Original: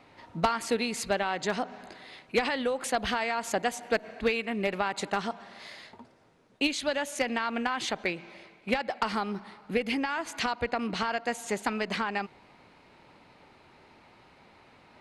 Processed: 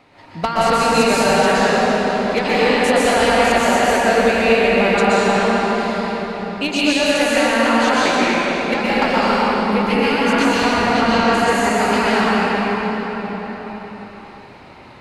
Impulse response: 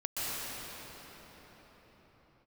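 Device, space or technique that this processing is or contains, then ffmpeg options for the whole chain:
cathedral: -filter_complex "[1:a]atrim=start_sample=2205[a];[0:a][a]afir=irnorm=-1:irlink=0,volume=7.5dB"

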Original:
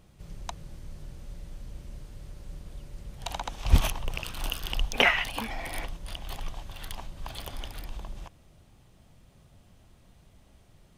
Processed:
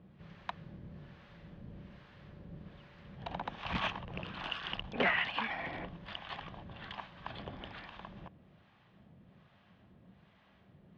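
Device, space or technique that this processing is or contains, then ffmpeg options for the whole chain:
guitar amplifier with harmonic tremolo: -filter_complex "[0:a]acrossover=split=680[a][b];[a]aeval=exprs='val(0)*(1-0.7/2+0.7/2*cos(2*PI*1.2*n/s))':c=same[c];[b]aeval=exprs='val(0)*(1-0.7/2-0.7/2*cos(2*PI*1.2*n/s))':c=same[d];[c][d]amix=inputs=2:normalize=0,asoftclip=type=tanh:threshold=-25dB,highpass=110,equalizer=f=190:t=q:w=4:g=7,equalizer=f=1.1k:t=q:w=4:g=3,equalizer=f=1.7k:t=q:w=4:g=6,lowpass=f=3.5k:w=0.5412,lowpass=f=3.5k:w=1.3066,volume=1dB"

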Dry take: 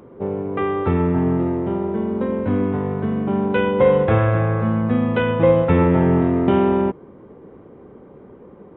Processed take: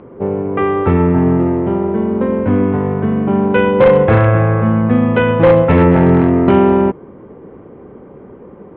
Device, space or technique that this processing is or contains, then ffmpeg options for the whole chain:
synthesiser wavefolder: -af "aeval=exprs='0.376*(abs(mod(val(0)/0.376+3,4)-2)-1)':c=same,lowpass=f=3.1k:w=0.5412,lowpass=f=3.1k:w=1.3066,volume=6.5dB"

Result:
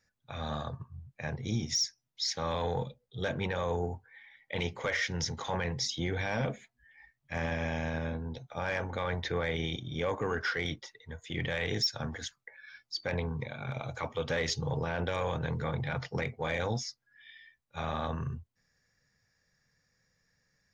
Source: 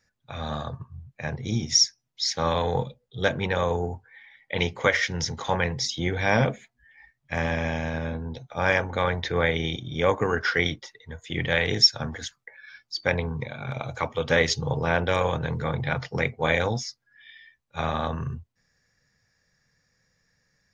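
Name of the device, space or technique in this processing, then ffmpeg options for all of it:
soft clipper into limiter: -af "asoftclip=type=tanh:threshold=-9.5dB,alimiter=limit=-18dB:level=0:latency=1:release=23,volume=-4.5dB"

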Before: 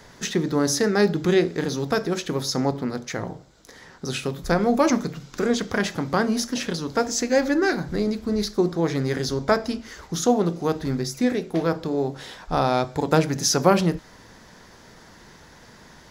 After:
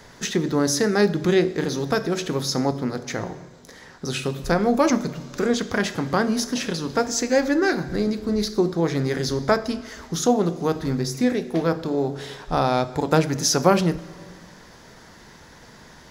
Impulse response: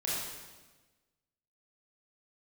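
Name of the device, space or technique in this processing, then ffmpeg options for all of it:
ducked reverb: -filter_complex "[0:a]asplit=3[a][b][c];[1:a]atrim=start_sample=2205[d];[b][d]afir=irnorm=-1:irlink=0[e];[c]apad=whole_len=710211[f];[e][f]sidechaincompress=threshold=-22dB:ratio=8:attack=16:release=641,volume=-15dB[g];[a][g]amix=inputs=2:normalize=0"

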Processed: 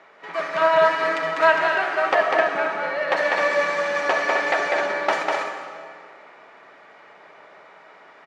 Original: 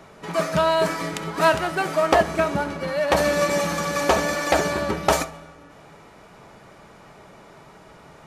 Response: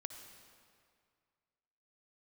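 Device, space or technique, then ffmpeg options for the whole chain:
station announcement: -filter_complex "[0:a]highpass=480,lowpass=3.6k,equalizer=f=1.9k:t=o:w=0.57:g=6.5,aecho=1:1:198.3|259.5:0.708|0.447[a];[1:a]atrim=start_sample=2205[b];[a][b]afir=irnorm=-1:irlink=0,asettb=1/sr,asplit=3[c][d][e];[c]atrim=end=0.614[f];[d]atrim=start=0.61:end=1.62,asetpts=PTS-STARTPTS,afade=t=in:d=0.004:c=qsin,afade=t=out:st=1.006:d=0.004:c=qsin,aecho=1:1:6.3:0.8,atrim=end_sample=44541[g];[e]atrim=start=1.616[h];[f][g]acrossfade=d=0.004:c1=hsin:c2=qsin[i];[i][h]acrossfade=d=0.004:c1=qsin:c2=hsin,volume=1dB"

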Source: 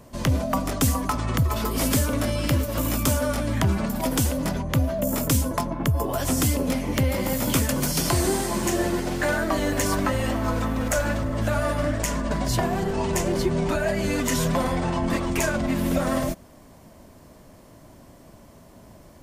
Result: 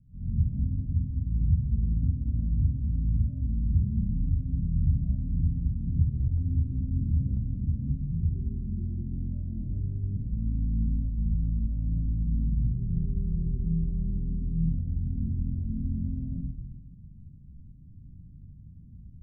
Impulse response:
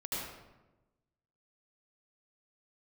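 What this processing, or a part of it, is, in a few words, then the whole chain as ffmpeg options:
club heard from the street: -filter_complex "[0:a]alimiter=limit=-19dB:level=0:latency=1:release=186,lowpass=f=160:w=0.5412,lowpass=f=160:w=1.3066[a];[1:a]atrim=start_sample=2205[b];[a][b]afir=irnorm=-1:irlink=0,asettb=1/sr,asplit=3[c][d][e];[c]atrim=end=6.344[f];[d]atrim=start=6.34:end=7.37,asetpts=PTS-STARTPTS,afade=t=in:d=0.004:c=qsin,afade=t=out:st=1.026:d=0.004:c=qsin,asplit=2[g][h];[h]adelay=38,volume=-5.5dB[i];[g][i]amix=inputs=2:normalize=0,atrim=end_sample=45423[j];[e]atrim=start=7.366[k];[f][j]acrossfade=d=0.004:c1=hsin:c2=qsin[l];[l][k]acrossfade=d=0.004:c1=qsin:c2=hsin"

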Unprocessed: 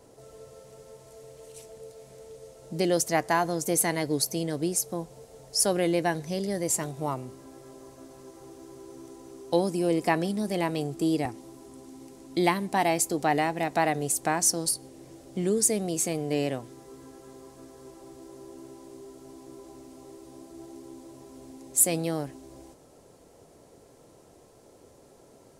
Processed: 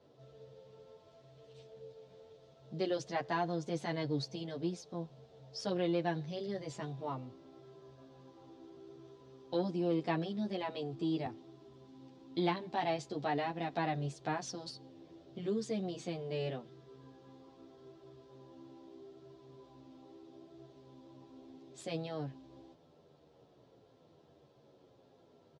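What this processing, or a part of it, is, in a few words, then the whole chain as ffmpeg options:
barber-pole flanger into a guitar amplifier: -filter_complex "[0:a]asplit=2[a][b];[b]adelay=10.1,afreqshift=-0.78[c];[a][c]amix=inputs=2:normalize=1,asoftclip=type=tanh:threshold=-16dB,highpass=75,equalizer=f=140:t=q:w=4:g=7,equalizer=f=2.1k:t=q:w=4:g=-4,equalizer=f=3.5k:t=q:w=4:g=6,lowpass=f=4.6k:w=0.5412,lowpass=f=4.6k:w=1.3066,volume=-6dB"

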